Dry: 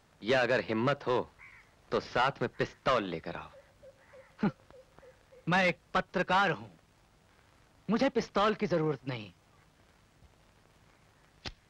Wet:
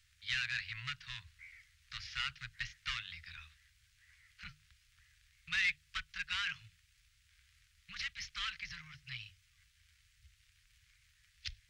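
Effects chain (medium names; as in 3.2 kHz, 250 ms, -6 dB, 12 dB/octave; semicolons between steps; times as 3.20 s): inverse Chebyshev band-stop 270–660 Hz, stop band 70 dB; hum notches 50/100/150 Hz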